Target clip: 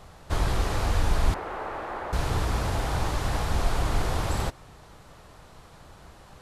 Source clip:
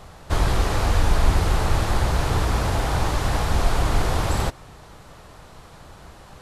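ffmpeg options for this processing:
-filter_complex "[0:a]asettb=1/sr,asplit=3[s0][s1][s2];[s0]atrim=end=1.344[s3];[s1]atrim=start=1.34:end=2.13,asetpts=PTS-STARTPTS,afade=t=in:d=0.004:c=qsin,afade=t=out:st=0.786:d=0.004:c=qsin,acrossover=split=310 2200:gain=0.0708 1 0.0891[s4][s5][s6];[s4][s5][s6]amix=inputs=3:normalize=0[s7];[s2]atrim=start=2.126[s8];[s3][s7]acrossfade=d=0.004:c1=hsin:c2=qsin[s9];[s9][s8]acrossfade=d=0.004:c1=qsin:c2=hsin,volume=0.562"

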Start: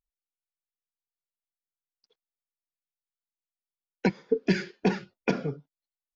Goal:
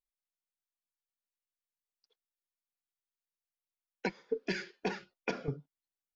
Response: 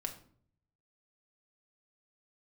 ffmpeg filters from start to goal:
-af "asetnsamples=n=441:p=0,asendcmd='5.48 equalizer g 4',equalizer=f=120:w=0.46:g=-12,volume=0.562"

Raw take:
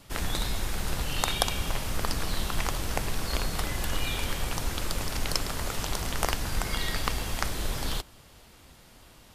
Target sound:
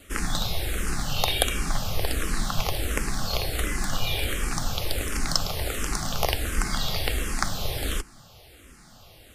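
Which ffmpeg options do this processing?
-filter_complex "[0:a]asuperstop=centerf=960:order=4:qfactor=8,asplit=2[s0][s1];[s1]afreqshift=-1.4[s2];[s0][s2]amix=inputs=2:normalize=1,volume=2"

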